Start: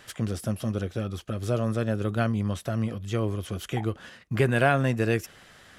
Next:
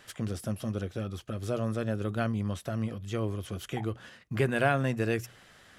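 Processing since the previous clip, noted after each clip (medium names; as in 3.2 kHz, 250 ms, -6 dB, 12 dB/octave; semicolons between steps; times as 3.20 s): hum notches 60/120 Hz; trim -4 dB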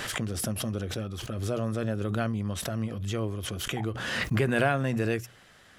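swell ahead of each attack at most 29 dB/s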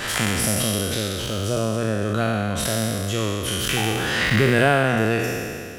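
spectral sustain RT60 2.29 s; trim +4.5 dB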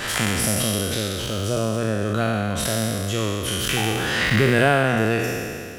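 crackle 95 per s -36 dBFS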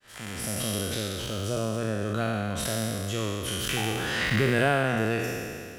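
fade-in on the opening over 0.78 s; trim -6 dB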